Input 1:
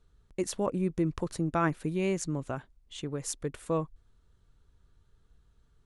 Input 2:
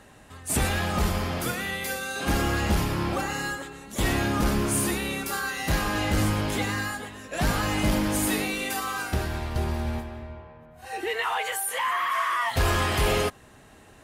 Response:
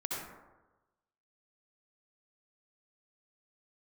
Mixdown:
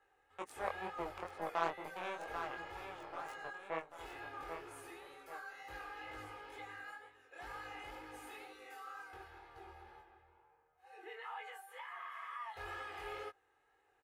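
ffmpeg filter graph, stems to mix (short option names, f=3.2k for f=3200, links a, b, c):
-filter_complex "[0:a]aeval=exprs='0.188*(cos(1*acos(clip(val(0)/0.188,-1,1)))-cos(1*PI/2))+0.0376*(cos(7*acos(clip(val(0)/0.188,-1,1)))-cos(7*PI/2))':c=same,volume=-3dB,asplit=2[a][b];[b]volume=-7.5dB[c];[1:a]aecho=1:1:2.4:0.93,volume=-18dB[d];[c]aecho=0:1:789|1578|2367|3156|3945|4734|5523:1|0.47|0.221|0.104|0.0488|0.0229|0.0108[e];[a][d][e]amix=inputs=3:normalize=0,acrossover=split=450 2700:gain=0.126 1 0.2[f][g][h];[f][g][h]amix=inputs=3:normalize=0,flanger=delay=18.5:depth=5.7:speed=2.1"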